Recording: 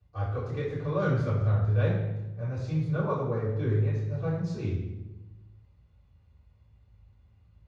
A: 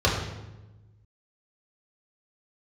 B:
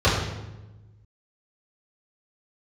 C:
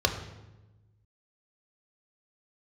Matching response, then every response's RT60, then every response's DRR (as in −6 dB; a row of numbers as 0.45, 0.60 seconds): B; 1.1, 1.1, 1.1 seconds; −6.0, −12.5, 3.5 decibels